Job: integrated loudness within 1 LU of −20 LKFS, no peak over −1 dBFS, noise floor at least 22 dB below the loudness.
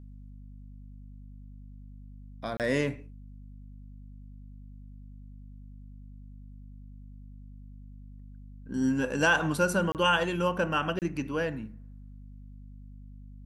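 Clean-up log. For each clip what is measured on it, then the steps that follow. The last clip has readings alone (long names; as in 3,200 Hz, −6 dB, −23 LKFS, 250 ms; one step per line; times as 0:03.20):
number of dropouts 3; longest dropout 28 ms; mains hum 50 Hz; hum harmonics up to 250 Hz; level of the hum −44 dBFS; integrated loudness −28.0 LKFS; sample peak −11.0 dBFS; target loudness −20.0 LKFS
→ repair the gap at 0:02.57/0:09.92/0:10.99, 28 ms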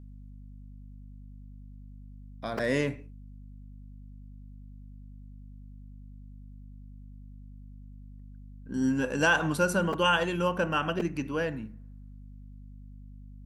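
number of dropouts 0; mains hum 50 Hz; hum harmonics up to 250 Hz; level of the hum −44 dBFS
→ mains-hum notches 50/100/150/200/250 Hz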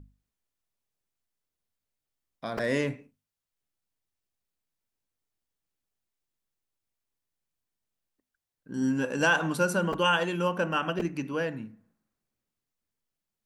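mains hum none found; integrated loudness −28.0 LKFS; sample peak −11.5 dBFS; target loudness −20.0 LKFS
→ level +8 dB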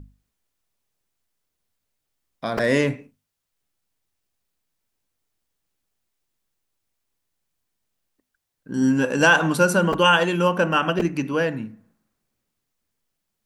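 integrated loudness −20.0 LKFS; sample peak −3.5 dBFS; background noise floor −80 dBFS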